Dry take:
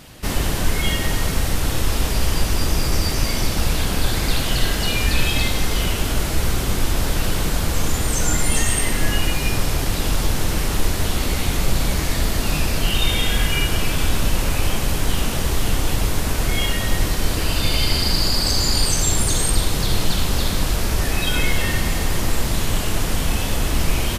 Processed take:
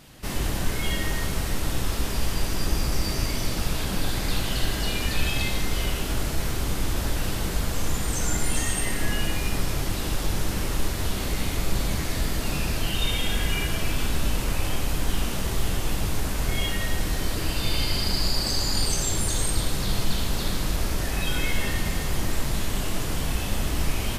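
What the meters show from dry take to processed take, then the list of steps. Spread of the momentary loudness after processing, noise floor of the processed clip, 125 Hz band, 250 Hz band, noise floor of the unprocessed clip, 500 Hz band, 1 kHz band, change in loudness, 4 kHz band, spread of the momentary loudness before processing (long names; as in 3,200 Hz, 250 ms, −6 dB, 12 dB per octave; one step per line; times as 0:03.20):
4 LU, −29 dBFS, −6.0 dB, −5.0 dB, −23 dBFS, −6.0 dB, −6.0 dB, −6.0 dB, −6.5 dB, 4 LU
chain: dense smooth reverb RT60 1.4 s, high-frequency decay 0.65×, DRR 4 dB
level −7.5 dB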